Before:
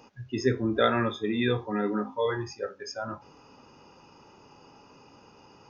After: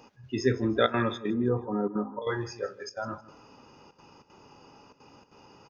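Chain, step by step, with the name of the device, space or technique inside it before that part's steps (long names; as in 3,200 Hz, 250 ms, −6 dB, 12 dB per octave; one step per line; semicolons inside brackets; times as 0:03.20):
0:01.30–0:02.22: Butterworth low-pass 1,200 Hz 36 dB per octave
trance gate with a delay (gate pattern "xx.xxxxxxxx.x" 192 BPM −12 dB; repeating echo 159 ms, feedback 32%, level −18 dB)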